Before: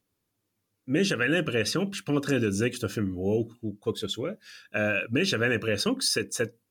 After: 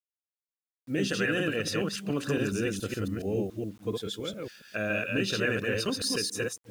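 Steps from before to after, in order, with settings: chunks repeated in reverse 140 ms, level -1.5 dB; bit crusher 9-bit; trim -5 dB

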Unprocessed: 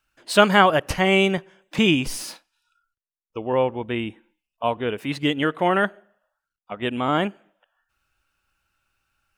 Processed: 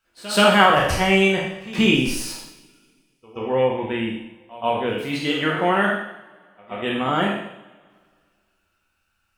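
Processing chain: spectral sustain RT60 0.67 s; pre-echo 129 ms -18 dB; two-slope reverb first 0.49 s, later 2.1 s, from -22 dB, DRR 0.5 dB; trim -3 dB

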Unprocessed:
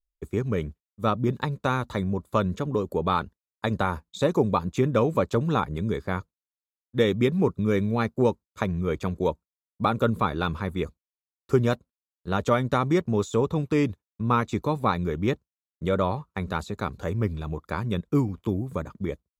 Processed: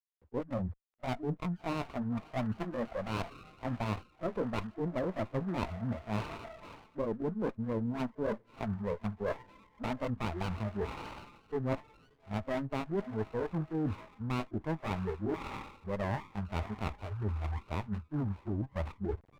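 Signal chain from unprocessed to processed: pitch bend over the whole clip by +3.5 st ending unshifted; on a send: echo that smears into a reverb 648 ms, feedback 49%, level -15.5 dB; on the sum: spectral noise reduction 29 dB; bit crusher 11-bit; brick-wall FIR low-pass 1.8 kHz; reverse; compression 6:1, threshold -40 dBFS, peak gain reduction 20.5 dB; reverse; sliding maximum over 17 samples; trim +7.5 dB

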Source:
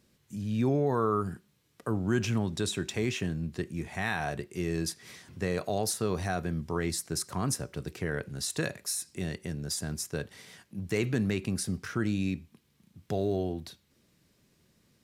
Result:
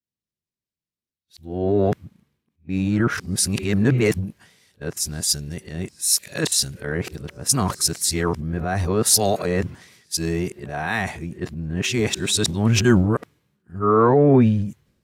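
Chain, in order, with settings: reverse the whole clip; transient shaper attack -1 dB, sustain +7 dB; three bands expanded up and down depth 100%; trim +8.5 dB

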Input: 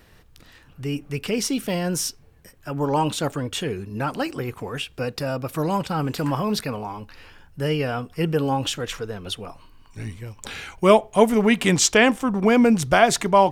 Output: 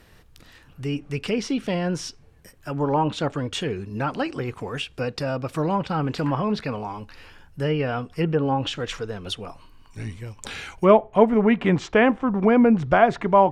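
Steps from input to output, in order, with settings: low-pass that closes with the level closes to 1.7 kHz, closed at -17 dBFS

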